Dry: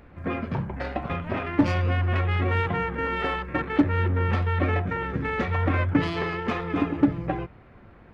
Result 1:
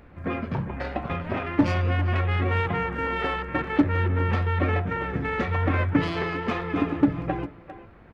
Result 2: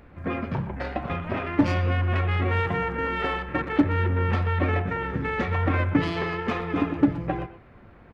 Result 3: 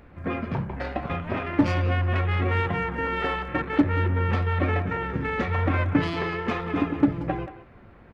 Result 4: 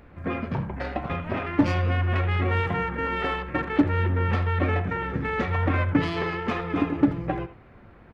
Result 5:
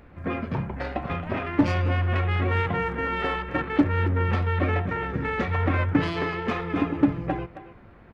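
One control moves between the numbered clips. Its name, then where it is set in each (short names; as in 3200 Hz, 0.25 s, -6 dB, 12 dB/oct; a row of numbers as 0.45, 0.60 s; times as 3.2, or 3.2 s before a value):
speakerphone echo, time: 400, 120, 180, 80, 270 ms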